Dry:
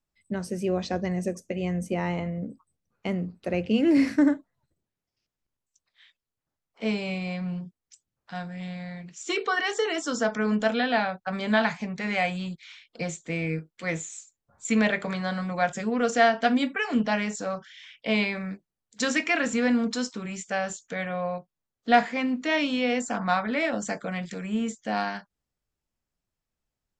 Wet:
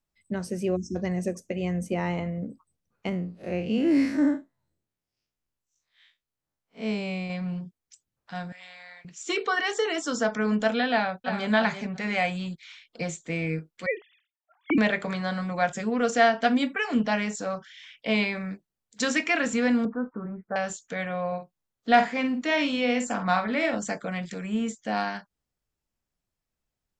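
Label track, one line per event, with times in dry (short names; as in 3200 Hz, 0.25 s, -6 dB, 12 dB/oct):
0.760000	0.960000	spectral delete 400–5200 Hz
3.090000	7.300000	time blur width 94 ms
8.520000	9.050000	Chebyshev high-pass 1100 Hz
10.900000	11.520000	echo throw 0.34 s, feedback 20%, level -8.5 dB
13.860000	14.780000	sine-wave speech
19.850000	20.560000	steep low-pass 1500 Hz 48 dB/oct
21.270000	23.790000	doubler 49 ms -9 dB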